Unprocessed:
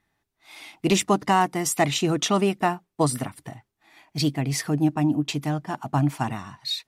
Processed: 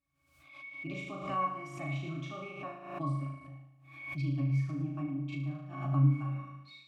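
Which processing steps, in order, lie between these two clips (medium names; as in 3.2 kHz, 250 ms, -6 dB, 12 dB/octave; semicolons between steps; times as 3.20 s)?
FFT filter 430 Hz 0 dB, 3.1 kHz +14 dB, 5.4 kHz +11 dB; added noise violet -46 dBFS; pitch-class resonator C#, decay 0.51 s; flutter echo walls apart 6.4 m, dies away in 0.86 s; swell ahead of each attack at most 70 dB/s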